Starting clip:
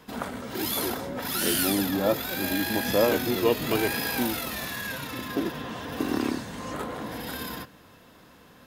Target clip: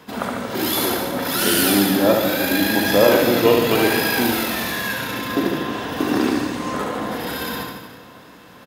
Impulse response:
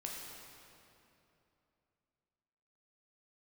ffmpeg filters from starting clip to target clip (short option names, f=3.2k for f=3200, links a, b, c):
-filter_complex "[0:a]highpass=f=120:p=1,aecho=1:1:70|147|231.7|324.9|427.4:0.631|0.398|0.251|0.158|0.1,asplit=2[a][b];[1:a]atrim=start_sample=2205,lowpass=6.2k[c];[b][c]afir=irnorm=-1:irlink=0,volume=-7.5dB[d];[a][d]amix=inputs=2:normalize=0,volume=5dB"